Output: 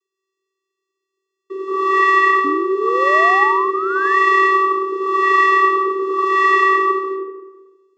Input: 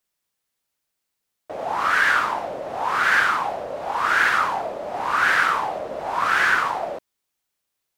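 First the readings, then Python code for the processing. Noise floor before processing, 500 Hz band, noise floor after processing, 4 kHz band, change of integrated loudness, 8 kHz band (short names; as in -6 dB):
-80 dBFS, +11.0 dB, -81 dBFS, -1.5 dB, +6.0 dB, n/a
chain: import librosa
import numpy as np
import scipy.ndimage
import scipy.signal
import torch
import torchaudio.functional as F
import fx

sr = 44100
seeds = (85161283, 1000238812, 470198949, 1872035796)

y = fx.rev_freeverb(x, sr, rt60_s=1.2, hf_ratio=0.4, predelay_ms=105, drr_db=-2.5)
y = fx.vocoder(y, sr, bands=16, carrier='square', carrier_hz=384.0)
y = fx.spec_paint(y, sr, seeds[0], shape='rise', start_s=2.44, length_s=1.74, low_hz=280.0, high_hz=1900.0, level_db=-26.0)
y = F.gain(torch.from_numpy(y), 3.0).numpy()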